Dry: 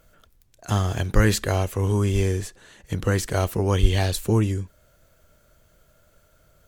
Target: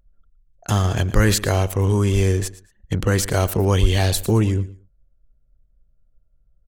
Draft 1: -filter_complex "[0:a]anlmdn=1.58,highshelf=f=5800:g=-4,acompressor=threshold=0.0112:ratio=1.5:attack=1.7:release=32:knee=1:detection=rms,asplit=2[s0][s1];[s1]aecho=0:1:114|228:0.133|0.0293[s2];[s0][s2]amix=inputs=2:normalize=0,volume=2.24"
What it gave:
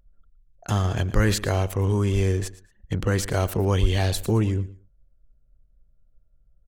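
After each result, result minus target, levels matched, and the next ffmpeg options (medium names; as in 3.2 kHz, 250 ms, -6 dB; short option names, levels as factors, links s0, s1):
compression: peak gain reduction +4 dB; 8 kHz band -3.0 dB
-filter_complex "[0:a]anlmdn=1.58,highshelf=f=5800:g=-4,acompressor=threshold=0.0447:ratio=1.5:attack=1.7:release=32:knee=1:detection=rms,asplit=2[s0][s1];[s1]aecho=0:1:114|228:0.133|0.0293[s2];[s0][s2]amix=inputs=2:normalize=0,volume=2.24"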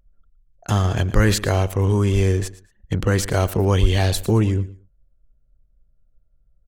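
8 kHz band -3.5 dB
-filter_complex "[0:a]anlmdn=1.58,highshelf=f=5800:g=2.5,acompressor=threshold=0.0447:ratio=1.5:attack=1.7:release=32:knee=1:detection=rms,asplit=2[s0][s1];[s1]aecho=0:1:114|228:0.133|0.0293[s2];[s0][s2]amix=inputs=2:normalize=0,volume=2.24"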